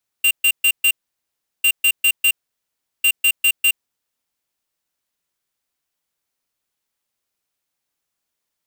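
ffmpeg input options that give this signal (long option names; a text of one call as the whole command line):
ffmpeg -f lavfi -i "aevalsrc='0.2*(2*lt(mod(2780*t,1),0.5)-1)*clip(min(mod(mod(t,1.4),0.2),0.07-mod(mod(t,1.4),0.2))/0.005,0,1)*lt(mod(t,1.4),0.8)':duration=4.2:sample_rate=44100" out.wav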